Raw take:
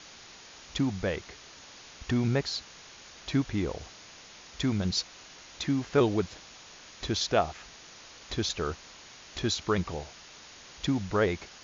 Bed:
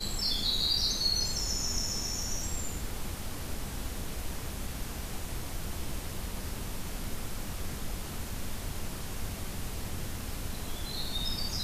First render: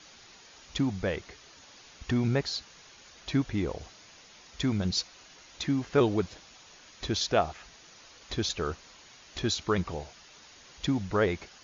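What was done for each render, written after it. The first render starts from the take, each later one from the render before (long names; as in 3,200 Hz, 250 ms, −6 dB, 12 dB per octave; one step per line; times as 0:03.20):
broadband denoise 6 dB, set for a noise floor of −50 dBFS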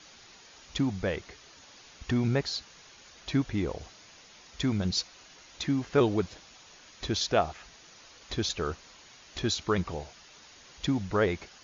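no processing that can be heard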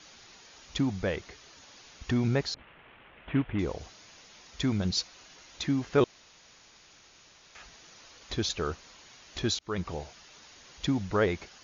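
0:02.54–0:03.59: variable-slope delta modulation 16 kbit/s
0:06.04–0:07.55: fill with room tone
0:09.59–0:10.02: fade in equal-power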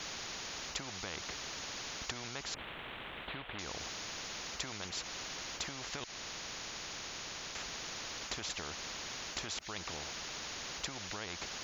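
downward compressor, threshold −32 dBFS, peak gain reduction 13.5 dB
every bin compressed towards the loudest bin 4 to 1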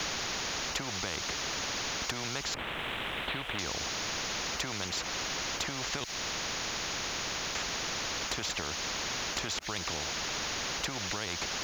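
leveller curve on the samples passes 2
multiband upward and downward compressor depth 70%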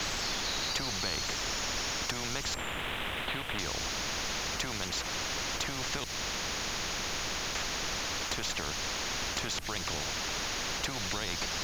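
mix in bed −9 dB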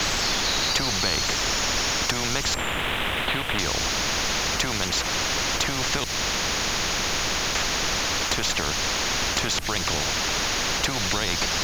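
level +9.5 dB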